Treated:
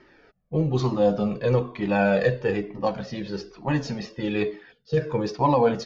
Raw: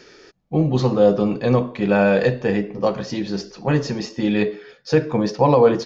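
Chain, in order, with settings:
low-pass that shuts in the quiet parts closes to 2,000 Hz, open at −13 dBFS
gain on a spectral selection 0:04.72–0:04.98, 490–2,700 Hz −15 dB
flanger whose copies keep moving one way falling 1.1 Hz

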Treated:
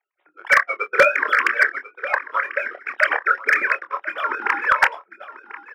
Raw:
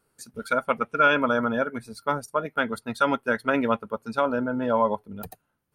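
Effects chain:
three sine waves on the formant tracks
gate on every frequency bin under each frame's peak −15 dB weak
leveller curve on the samples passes 2
three-way crossover with the lows and the highs turned down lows −23 dB, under 280 Hz, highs −12 dB, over 2,500 Hz
double-tracking delay 26 ms −8.5 dB
single-tap delay 1,042 ms −16 dB
convolution reverb RT60 0.15 s, pre-delay 3 ms, DRR 18 dB
slew-rate limiting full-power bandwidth 300 Hz
level +6.5 dB

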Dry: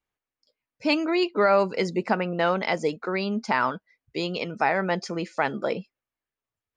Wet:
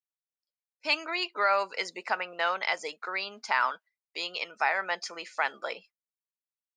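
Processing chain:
noise gate −44 dBFS, range −23 dB
high-pass filter 980 Hz 12 dB per octave

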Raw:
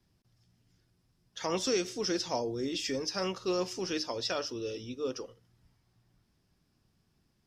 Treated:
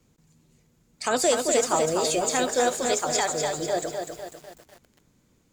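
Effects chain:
wrong playback speed 33 rpm record played at 45 rpm
feedback echo at a low word length 248 ms, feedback 55%, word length 9 bits, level −5 dB
level +8 dB

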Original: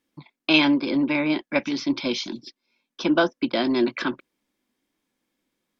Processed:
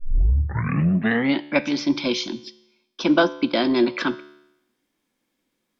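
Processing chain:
turntable start at the beginning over 1.44 s
tuned comb filter 73 Hz, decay 0.87 s, harmonics all, mix 50%
level +7.5 dB

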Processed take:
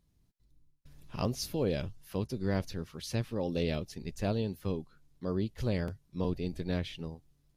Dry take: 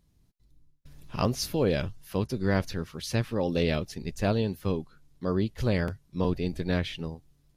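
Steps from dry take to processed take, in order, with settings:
dynamic equaliser 1,500 Hz, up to −5 dB, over −45 dBFS, Q 0.96
level −5 dB

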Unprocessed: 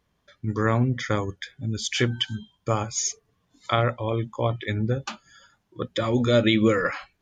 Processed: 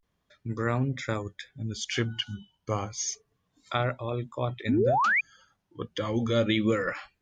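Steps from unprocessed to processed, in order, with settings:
sound drawn into the spectrogram rise, 0:04.71–0:05.24, 210–2,600 Hz −18 dBFS
pitch vibrato 0.3 Hz 97 cents
level −5.5 dB

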